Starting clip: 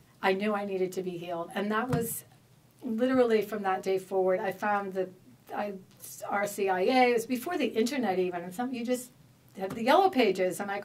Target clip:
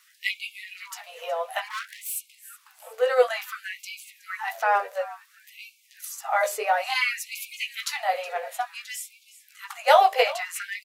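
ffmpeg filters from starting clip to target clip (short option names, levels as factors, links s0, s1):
-filter_complex "[0:a]asplit=5[s0][s1][s2][s3][s4];[s1]adelay=368,afreqshift=-73,volume=0.141[s5];[s2]adelay=736,afreqshift=-146,volume=0.0653[s6];[s3]adelay=1104,afreqshift=-219,volume=0.0299[s7];[s4]adelay=1472,afreqshift=-292,volume=0.0138[s8];[s0][s5][s6][s7][s8]amix=inputs=5:normalize=0,asettb=1/sr,asplit=3[s9][s10][s11];[s9]atrim=end=1.684[s12];[s10]atrim=start=1.68:end=2.16,asetpts=PTS-STARTPTS,afade=t=in:d=0.004:c=qsin,afade=t=out:st=0.476:d=0.004:c=qsin,volume=56.2,asoftclip=hard,volume=0.0178[s13];[s11]atrim=start=2.156[s14];[s12][s13]acrossfade=d=0.004:c1=hsin:c2=qsin[s15];[s15][s14]acrossfade=d=0.004:c1=qsin:c2=hsin,afftfilt=real='re*gte(b*sr/1024,420*pow(2200/420,0.5+0.5*sin(2*PI*0.57*pts/sr)))':imag='im*gte(b*sr/1024,420*pow(2200/420,0.5+0.5*sin(2*PI*0.57*pts/sr)))':win_size=1024:overlap=0.75,volume=2.24"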